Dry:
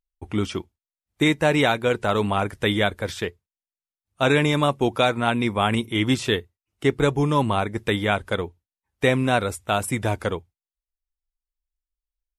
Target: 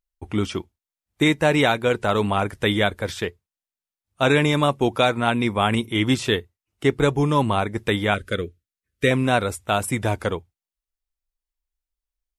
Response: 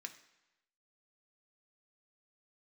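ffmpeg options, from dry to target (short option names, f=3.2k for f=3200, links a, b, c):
-filter_complex "[0:a]asettb=1/sr,asplit=3[a][b][c];[a]atrim=end=8.144[d];[b]atrim=start=8.14:end=9.11,asetpts=PTS-STARTPTS,afade=t=in:d=0.004:c=qsin,afade=t=out:st=0.966:d=0.004:c=qsin,asuperstop=centerf=860:order=4:qfactor=1.1[e];[c]atrim=start=9.106[f];[d][e]acrossfade=d=0.004:c1=hsin:c2=qsin[g];[g][f]acrossfade=d=0.004:c1=qsin:c2=hsin,volume=1dB"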